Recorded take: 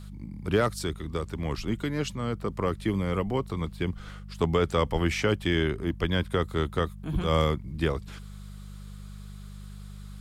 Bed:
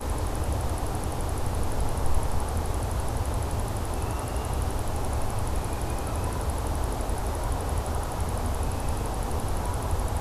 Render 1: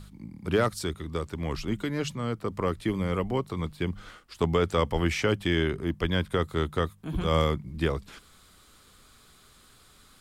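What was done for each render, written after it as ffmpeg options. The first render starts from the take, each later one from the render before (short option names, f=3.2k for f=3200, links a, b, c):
-af "bandreject=f=50:t=h:w=4,bandreject=f=100:t=h:w=4,bandreject=f=150:t=h:w=4,bandreject=f=200:t=h:w=4"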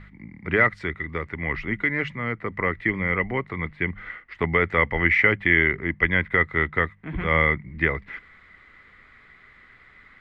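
-af "lowpass=f=2k:t=q:w=16"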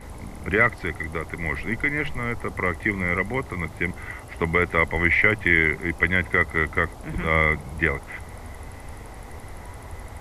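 -filter_complex "[1:a]volume=-10.5dB[a];[0:a][a]amix=inputs=2:normalize=0"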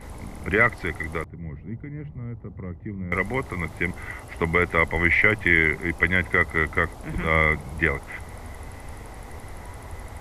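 -filter_complex "[0:a]asettb=1/sr,asplit=3[a][b][c];[a]atrim=end=1.244[d];[b]atrim=start=1.24:end=3.12,asetpts=PTS-STARTPTS,afade=t=in:d=0.004:c=qsin,afade=t=out:st=1.876:d=0.004:c=qsin,bandpass=f=130:t=q:w=1.3[e];[c]atrim=start=3.116[f];[d][e]acrossfade=d=0.004:c1=hsin:c2=qsin[g];[g][f]acrossfade=d=0.004:c1=qsin:c2=hsin"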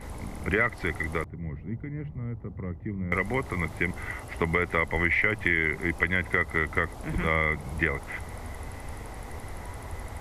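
-af "acompressor=threshold=-22dB:ratio=3"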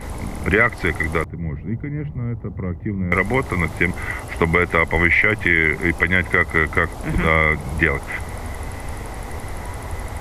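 -af "volume=9dB,alimiter=limit=-3dB:level=0:latency=1"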